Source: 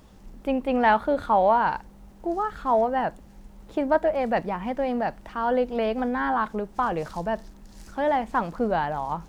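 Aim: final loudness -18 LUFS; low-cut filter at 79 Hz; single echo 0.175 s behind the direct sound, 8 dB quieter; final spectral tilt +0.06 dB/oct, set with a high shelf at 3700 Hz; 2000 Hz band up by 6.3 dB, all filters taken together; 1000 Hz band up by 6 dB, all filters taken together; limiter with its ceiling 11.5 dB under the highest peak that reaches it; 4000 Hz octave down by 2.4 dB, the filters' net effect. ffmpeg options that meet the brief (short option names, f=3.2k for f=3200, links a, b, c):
-af "highpass=79,equalizer=f=1k:t=o:g=6.5,equalizer=f=2k:t=o:g=7.5,highshelf=f=3.7k:g=-3,equalizer=f=4k:t=o:g=-7,alimiter=limit=-13.5dB:level=0:latency=1,aecho=1:1:175:0.398,volume=5.5dB"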